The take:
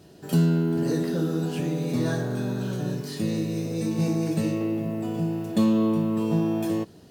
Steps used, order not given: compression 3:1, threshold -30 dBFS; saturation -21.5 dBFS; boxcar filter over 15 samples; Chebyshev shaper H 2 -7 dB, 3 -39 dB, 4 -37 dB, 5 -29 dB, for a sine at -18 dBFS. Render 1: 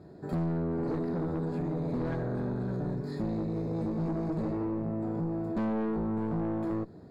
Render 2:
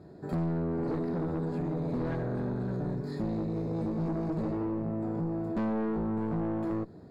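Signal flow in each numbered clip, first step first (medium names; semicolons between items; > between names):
Chebyshev shaper > boxcar filter > saturation > compression; boxcar filter > Chebyshev shaper > saturation > compression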